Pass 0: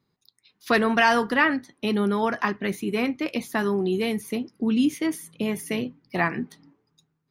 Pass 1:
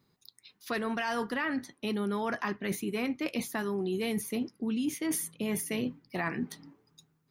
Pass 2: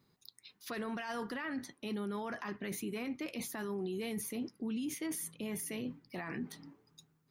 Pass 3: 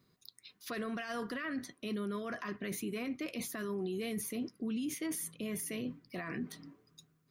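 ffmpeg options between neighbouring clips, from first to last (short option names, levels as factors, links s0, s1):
-af "alimiter=limit=0.178:level=0:latency=1:release=296,areverse,acompressor=threshold=0.0251:ratio=6,areverse,highshelf=f=6700:g=5.5,volume=1.33"
-af "alimiter=level_in=2.11:limit=0.0631:level=0:latency=1:release=37,volume=0.473,volume=0.891"
-af "asuperstop=centerf=860:order=8:qfactor=5.6,volume=1.12"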